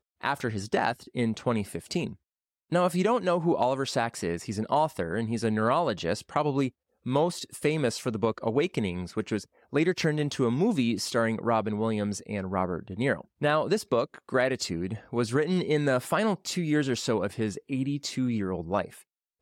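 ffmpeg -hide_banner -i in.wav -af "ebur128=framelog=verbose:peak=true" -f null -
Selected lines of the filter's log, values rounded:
Integrated loudness:
  I:         -28.3 LUFS
  Threshold: -38.4 LUFS
Loudness range:
  LRA:         1.5 LU
  Threshold: -48.2 LUFS
  LRA low:   -29.0 LUFS
  LRA high:  -27.5 LUFS
True peak:
  Peak:      -12.7 dBFS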